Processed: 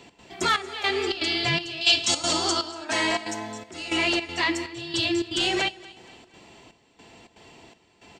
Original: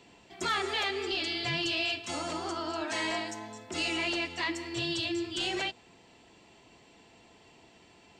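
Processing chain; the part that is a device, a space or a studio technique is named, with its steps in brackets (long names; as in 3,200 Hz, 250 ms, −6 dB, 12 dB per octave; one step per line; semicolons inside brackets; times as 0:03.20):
0:01.81–0:02.72: flat-topped bell 5,200 Hz +10.5 dB
trance gate with a delay (gate pattern "x.xxxx...xx" 161 BPM −12 dB; repeating echo 235 ms, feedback 46%, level −21 dB)
level +8 dB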